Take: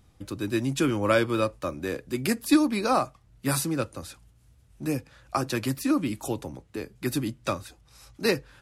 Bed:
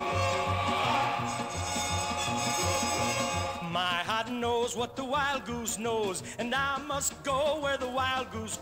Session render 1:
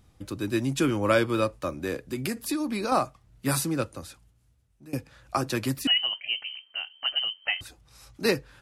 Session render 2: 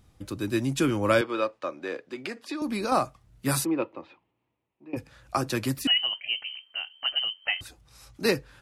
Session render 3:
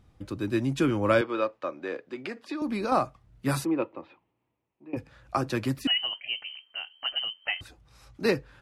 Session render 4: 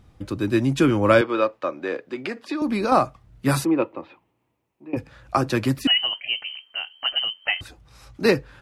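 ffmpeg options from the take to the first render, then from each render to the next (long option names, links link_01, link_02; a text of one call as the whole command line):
ffmpeg -i in.wav -filter_complex "[0:a]asettb=1/sr,asplit=3[link_01][link_02][link_03];[link_01]atrim=end=1.984[link_04];[link_02]atrim=start=1.98:end=2.92,asetpts=PTS-STARTPTS,afade=type=in:duration=0.004:curve=qsin,afade=type=out:start_time=0.936:duration=0.004:curve=qsin,acompressor=threshold=-25dB:ratio=6:attack=3.2:release=140:knee=1:detection=peak[link_05];[link_03]atrim=start=2.916[link_06];[link_04][link_05]acrossfade=duration=0.004:curve1=hsin:curve2=qsin[link_07];[link_07][link_06]acrossfade=duration=0.004:curve1=qsin:curve2=hsin,asettb=1/sr,asplit=3[link_08][link_09][link_10];[link_08]atrim=end=5.874[link_11];[link_09]atrim=start=5.87:end=7.61,asetpts=PTS-STARTPTS,afade=type=in:duration=0.004:curve=qsin,afade=type=out:start_time=1.736:duration=0.004:curve=qsin,lowpass=frequency=2700:width_type=q:width=0.5098,lowpass=frequency=2700:width_type=q:width=0.6013,lowpass=frequency=2700:width_type=q:width=0.9,lowpass=frequency=2700:width_type=q:width=2.563,afreqshift=-3200[link_12];[link_10]atrim=start=7.606[link_13];[link_11][link_12]acrossfade=duration=0.004:curve1=hsin:curve2=qsin[link_14];[link_14][link_13]acrossfade=duration=0.004:curve1=qsin:curve2=hsin,asplit=2[link_15][link_16];[link_15]atrim=end=4.93,asetpts=PTS-STARTPTS,afade=type=out:start_time=3.82:duration=1.11:silence=0.0891251[link_17];[link_16]atrim=start=4.93,asetpts=PTS-STARTPTS,afade=type=in:duration=0.004:curve=hsin:silence=0.0891251[link_18];[link_17][link_18]concat=n=2:v=0:a=1" out.wav
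ffmpeg -i in.wav -filter_complex "[0:a]asettb=1/sr,asplit=3[link_01][link_02][link_03];[link_01]atrim=end=1.214[link_04];[link_02]atrim=start=1.21:end=2.62,asetpts=PTS-STARTPTS,afade=type=in:duration=0.004:curve=qsin,afade=type=out:start_time=1.406:duration=0.004:curve=qsin,highpass=380,lowpass=3900[link_05];[link_03]atrim=start=2.616[link_06];[link_04][link_05]acrossfade=duration=0.004:curve1=hsin:curve2=qsin[link_07];[link_07][link_06]acrossfade=duration=0.004:curve1=qsin:curve2=hsin,asplit=3[link_08][link_09][link_10];[link_08]afade=type=out:start_time=3.64:duration=0.02[link_11];[link_09]highpass=290,equalizer=frequency=340:width_type=q:width=4:gain=7,equalizer=frequency=950:width_type=q:width=4:gain=8,equalizer=frequency=1500:width_type=q:width=4:gain=-10,equalizer=frequency=2500:width_type=q:width=4:gain=3,lowpass=frequency=2800:width=0.5412,lowpass=frequency=2800:width=1.3066,afade=type=in:start_time=3.64:duration=0.02,afade=type=out:start_time=4.96:duration=0.02[link_12];[link_10]afade=type=in:start_time=4.96:duration=0.02[link_13];[link_11][link_12][link_13]amix=inputs=3:normalize=0" out.wav
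ffmpeg -i in.wav -af "highshelf=frequency=4900:gain=-12" out.wav
ffmpeg -i in.wav -af "volume=6.5dB" out.wav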